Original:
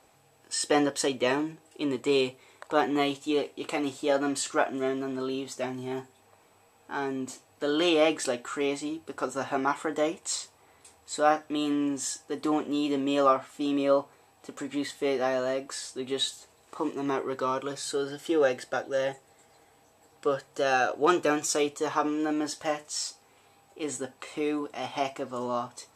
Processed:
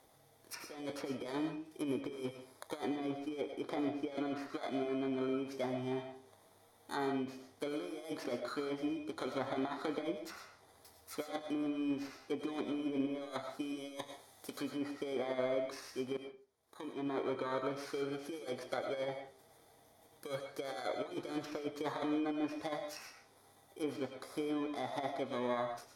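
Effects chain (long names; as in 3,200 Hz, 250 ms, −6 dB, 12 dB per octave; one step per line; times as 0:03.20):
samples in bit-reversed order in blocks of 16 samples
0:13.61–0:14.69: high-shelf EQ 2,600 Hz +9 dB
compressor whose output falls as the input rises −29 dBFS, ratio −0.5
treble cut that deepens with the level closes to 2,100 Hz, closed at −25.5 dBFS
0:02.80–0:04.39: high-shelf EQ 5,800 Hz −6 dB
0:16.17–0:17.20: fade in quadratic
convolution reverb RT60 0.35 s, pre-delay 65 ms, DRR 5.5 dB
level −7 dB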